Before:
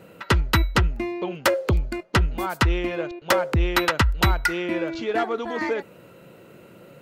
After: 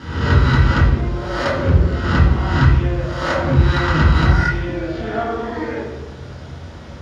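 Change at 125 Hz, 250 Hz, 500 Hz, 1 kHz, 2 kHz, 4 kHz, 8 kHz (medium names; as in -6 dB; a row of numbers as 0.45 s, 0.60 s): +11.0 dB, +6.5 dB, +2.0 dB, +3.5 dB, +3.5 dB, 0.0 dB, no reading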